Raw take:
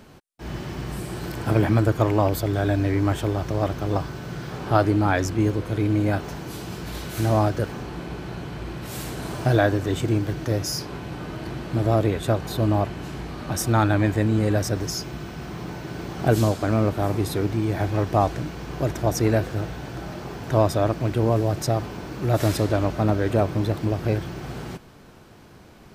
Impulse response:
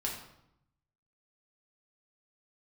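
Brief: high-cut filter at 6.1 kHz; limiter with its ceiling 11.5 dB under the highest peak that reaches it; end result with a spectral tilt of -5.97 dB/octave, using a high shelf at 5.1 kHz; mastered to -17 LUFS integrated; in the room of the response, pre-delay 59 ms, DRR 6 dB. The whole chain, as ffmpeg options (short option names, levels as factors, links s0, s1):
-filter_complex "[0:a]lowpass=6100,highshelf=f=5100:g=8.5,alimiter=limit=0.2:level=0:latency=1,asplit=2[s0][s1];[1:a]atrim=start_sample=2205,adelay=59[s2];[s1][s2]afir=irnorm=-1:irlink=0,volume=0.355[s3];[s0][s3]amix=inputs=2:normalize=0,volume=2.66"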